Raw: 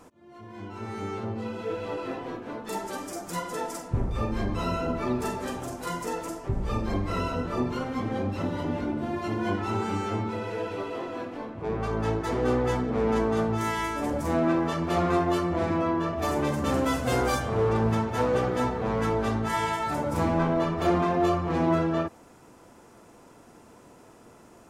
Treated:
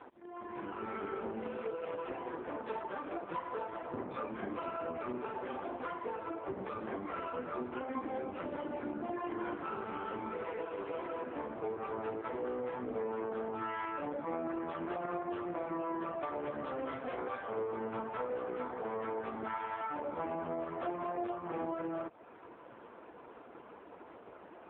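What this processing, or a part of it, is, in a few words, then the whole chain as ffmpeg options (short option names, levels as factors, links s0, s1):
voicemail: -af "highpass=330,lowpass=2600,acompressor=threshold=0.0112:ratio=8,volume=1.78" -ar 8000 -c:a libopencore_amrnb -b:a 4750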